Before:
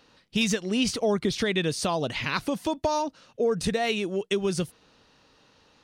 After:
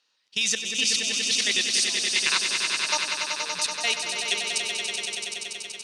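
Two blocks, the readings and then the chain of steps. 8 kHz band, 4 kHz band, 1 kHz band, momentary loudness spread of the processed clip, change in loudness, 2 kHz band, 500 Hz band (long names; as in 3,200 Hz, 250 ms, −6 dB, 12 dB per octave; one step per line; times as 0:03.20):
+12.0 dB, +10.0 dB, −3.5 dB, 8 LU, +3.5 dB, +6.5 dB, −12.5 dB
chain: meter weighting curve ITU-R 468
output level in coarse steps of 24 dB
echo that builds up and dies away 95 ms, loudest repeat 5, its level −7 dB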